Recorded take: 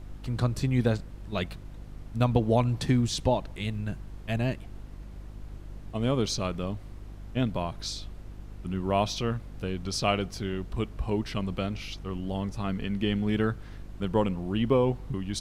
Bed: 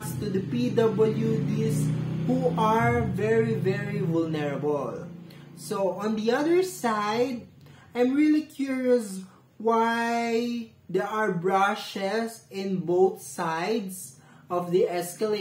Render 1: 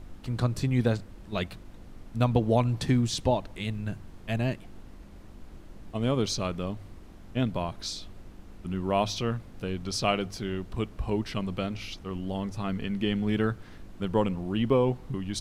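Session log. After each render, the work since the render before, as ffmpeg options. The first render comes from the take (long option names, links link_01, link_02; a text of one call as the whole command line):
ffmpeg -i in.wav -af "bandreject=frequency=50:width_type=h:width=4,bandreject=frequency=100:width_type=h:width=4,bandreject=frequency=150:width_type=h:width=4" out.wav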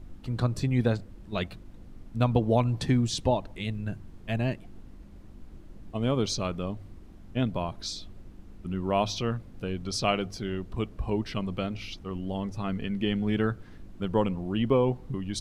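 ffmpeg -i in.wav -af "afftdn=noise_reduction=6:noise_floor=-48" out.wav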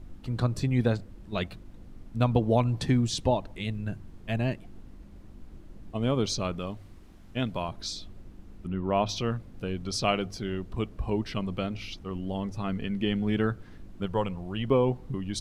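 ffmpeg -i in.wav -filter_complex "[0:a]asettb=1/sr,asplit=3[link_01][link_02][link_03];[link_01]atrim=end=6.594[link_04];[link_02]atrim=start=6.59:end=7.69,asetpts=PTS-STARTPTS,afade=type=in:duration=0.004:curve=qsin,afade=type=out:start_time=1.096:duration=0.004:curve=qsin,tiltshelf=frequency=850:gain=-3.5[link_05];[link_03]atrim=start=7.686[link_06];[link_04][link_05]acrossfade=duration=0.004:curve1=hsin:curve2=qsin[link_07];[link_07][link_06]acrossfade=duration=0.004:curve1=qsin:curve2=hsin,asettb=1/sr,asplit=3[link_08][link_09][link_10];[link_08]atrim=end=8.674[link_11];[link_09]atrim=start=8.67:end=9.09,asetpts=PTS-STARTPTS,afade=type=in:duration=0.004:curve=qsin,afade=type=out:start_time=0.416:duration=0.004:curve=qsin,bass=frequency=250:gain=0,treble=frequency=4000:gain=-13[link_12];[link_10]atrim=start=9.086[link_13];[link_11][link_12]acrossfade=duration=0.004:curve1=hsin:curve2=qsin[link_14];[link_14][link_13]acrossfade=duration=0.004:curve1=qsin:curve2=hsin,asettb=1/sr,asplit=3[link_15][link_16][link_17];[link_15]atrim=end=14.064[link_18];[link_16]atrim=start=14.06:end=14.68,asetpts=PTS-STARTPTS,afade=type=in:duration=0.004:curve=qsin,afade=type=out:start_time=0.616:duration=0.004:curve=qsin,equalizer=frequency=270:width=1.2:gain=-8.5[link_19];[link_17]atrim=start=14.676[link_20];[link_18][link_19]acrossfade=duration=0.004:curve1=hsin:curve2=qsin[link_21];[link_21][link_20]acrossfade=duration=0.004:curve1=qsin:curve2=hsin" out.wav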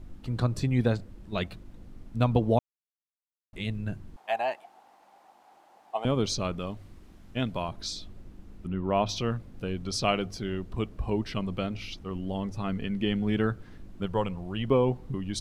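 ffmpeg -i in.wav -filter_complex "[0:a]asettb=1/sr,asplit=3[link_01][link_02][link_03];[link_01]atrim=end=4.164[link_04];[link_02]atrim=start=4.16:end=6.05,asetpts=PTS-STARTPTS,afade=type=in:duration=0.004:curve=qsin,afade=type=out:start_time=1.886:duration=0.004:curve=qsin,highpass=frequency=790:width_type=q:width=7.3[link_05];[link_03]atrim=start=6.046[link_06];[link_04][link_05]acrossfade=duration=0.004:curve1=hsin:curve2=qsin[link_07];[link_07][link_06]acrossfade=duration=0.004:curve1=qsin:curve2=hsin,asplit=3[link_08][link_09][link_10];[link_08]atrim=end=2.59,asetpts=PTS-STARTPTS,afade=type=out:start_time=2.586:duration=0.004:curve=hsin[link_11];[link_09]atrim=start=2.59:end=3.53,asetpts=PTS-STARTPTS,volume=0[link_12];[link_10]atrim=start=3.53,asetpts=PTS-STARTPTS,afade=type=in:duration=0.004:curve=hsin[link_13];[link_11][link_12][link_13]concat=n=3:v=0:a=1" out.wav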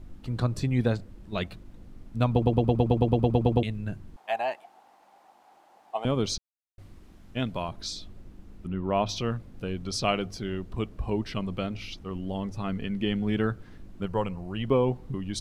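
ffmpeg -i in.wav -filter_complex "[0:a]asettb=1/sr,asplit=3[link_01][link_02][link_03];[link_01]atrim=end=14.034[link_04];[link_02]atrim=start=14.03:end=14.6,asetpts=PTS-STARTPTS,afade=type=in:duration=0.004:curve=qsin,afade=type=out:start_time=0.566:duration=0.004:curve=qsin,bandreject=frequency=3400:width=5.4[link_05];[link_03]atrim=start=14.596[link_06];[link_04][link_05]acrossfade=duration=0.004:curve1=hsin:curve2=qsin[link_07];[link_07][link_06]acrossfade=duration=0.004:curve1=qsin:curve2=hsin,asplit=15[link_08][link_09][link_10][link_11][link_12][link_13][link_14][link_15][link_16][link_17][link_18][link_19][link_20][link_21][link_22];[link_08]atrim=end=2.422[link_23];[link_09]atrim=start=2.308:end=2.422[link_24];[link_10]atrim=start=2.308:end=2.422[link_25];[link_11]atrim=start=2.308:end=2.422[link_26];[link_12]atrim=start=2.308:end=2.422[link_27];[link_13]atrim=start=2.308:end=2.422[link_28];[link_14]atrim=start=2.308:end=2.422[link_29];[link_15]atrim=start=2.308:end=2.422[link_30];[link_16]atrim=start=2.308:end=2.422[link_31];[link_17]atrim=start=2.308:end=2.422[link_32];[link_18]atrim=start=2.308:end=2.422[link_33];[link_19]atrim=start=2.308:end=2.422[link_34];[link_20]atrim=start=3.628:end=6.38,asetpts=PTS-STARTPTS,afade=type=out:start_time=2.748:duration=0.004:curve=hsin[link_35];[link_21]atrim=start=6.38:end=6.78,asetpts=PTS-STARTPTS,volume=0[link_36];[link_22]atrim=start=6.78,asetpts=PTS-STARTPTS,afade=type=in:duration=0.004:curve=hsin[link_37];[link_23][link_24]acrossfade=duration=0.004:curve1=hsin:curve2=hsin[link_38];[link_38][link_25]acrossfade=duration=0.004:curve1=hsin:curve2=hsin[link_39];[link_39][link_26]acrossfade=duration=0.004:curve1=hsin:curve2=hsin[link_40];[link_40][link_27]acrossfade=duration=0.004:curve1=hsin:curve2=hsin[link_41];[link_41][link_28]acrossfade=duration=0.004:curve1=hsin:curve2=hsin[link_42];[link_42][link_29]acrossfade=duration=0.004:curve1=hsin:curve2=hsin[link_43];[link_43][link_30]acrossfade=duration=0.004:curve1=hsin:curve2=hsin[link_44];[link_44][link_31]acrossfade=duration=0.004:curve1=hsin:curve2=hsin[link_45];[link_45][link_32]acrossfade=duration=0.004:curve1=hsin:curve2=hsin[link_46];[link_46][link_33]acrossfade=duration=0.004:curve1=hsin:curve2=hsin[link_47];[link_47][link_34]acrossfade=duration=0.004:curve1=hsin:curve2=hsin[link_48];[link_35][link_36][link_37]concat=n=3:v=0:a=1[link_49];[link_48][link_49]acrossfade=duration=0.004:curve1=hsin:curve2=hsin" out.wav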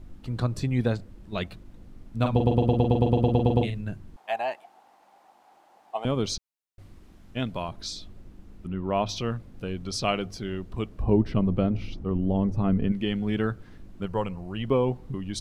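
ffmpeg -i in.wav -filter_complex "[0:a]asettb=1/sr,asplit=3[link_01][link_02][link_03];[link_01]atrim=end=2.194[link_04];[link_02]atrim=start=2.19:end=3.81,asetpts=PTS-STARTPTS,afade=type=in:duration=0.004:curve=qsin,afade=type=out:start_time=1.616:duration=0.004:curve=qsin,asplit=2[link_05][link_06];[link_06]adelay=44,volume=-5dB[link_07];[link_05][link_07]amix=inputs=2:normalize=0,atrim=end_sample=71442[link_08];[link_03]atrim=start=3.806[link_09];[link_04][link_08]acrossfade=duration=0.004:curve1=hsin:curve2=qsin[link_10];[link_10][link_09]acrossfade=duration=0.004:curve1=qsin:curve2=hsin,asettb=1/sr,asplit=3[link_11][link_12][link_13];[link_11]atrim=end=11.024[link_14];[link_12]atrim=start=11.02:end=12.92,asetpts=PTS-STARTPTS,afade=type=in:duration=0.004:curve=qsin,afade=type=out:start_time=1.896:duration=0.004:curve=qsin,tiltshelf=frequency=1200:gain=9[link_15];[link_13]atrim=start=12.916[link_16];[link_14][link_15]acrossfade=duration=0.004:curve1=hsin:curve2=qsin[link_17];[link_17][link_16]acrossfade=duration=0.004:curve1=qsin:curve2=hsin" out.wav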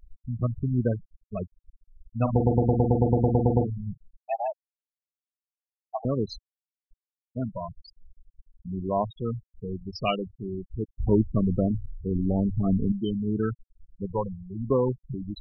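ffmpeg -i in.wav -af "afftfilt=real='re*gte(hypot(re,im),0.1)':imag='im*gte(hypot(re,im),0.1)':win_size=1024:overlap=0.75,adynamicequalizer=threshold=0.00251:dfrequency=2400:dqfactor=1.1:tfrequency=2400:tqfactor=1.1:attack=5:release=100:ratio=0.375:range=1.5:mode=boostabove:tftype=bell" out.wav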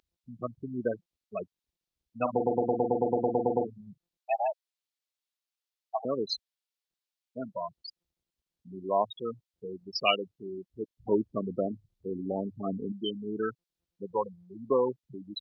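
ffmpeg -i in.wav -af "highpass=370,equalizer=frequency=3900:width=0.9:gain=8.5" out.wav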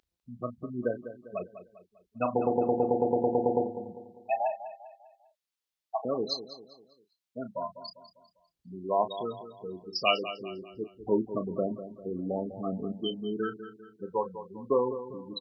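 ffmpeg -i in.wav -filter_complex "[0:a]asplit=2[link_01][link_02];[link_02]adelay=33,volume=-11dB[link_03];[link_01][link_03]amix=inputs=2:normalize=0,asplit=2[link_04][link_05];[link_05]adelay=199,lowpass=frequency=4600:poles=1,volume=-12dB,asplit=2[link_06][link_07];[link_07]adelay=199,lowpass=frequency=4600:poles=1,volume=0.43,asplit=2[link_08][link_09];[link_09]adelay=199,lowpass=frequency=4600:poles=1,volume=0.43,asplit=2[link_10][link_11];[link_11]adelay=199,lowpass=frequency=4600:poles=1,volume=0.43[link_12];[link_06][link_08][link_10][link_12]amix=inputs=4:normalize=0[link_13];[link_04][link_13]amix=inputs=2:normalize=0" out.wav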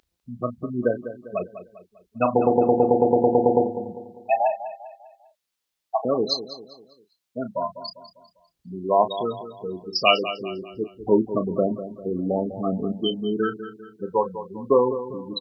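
ffmpeg -i in.wav -af "volume=8dB,alimiter=limit=-2dB:level=0:latency=1" out.wav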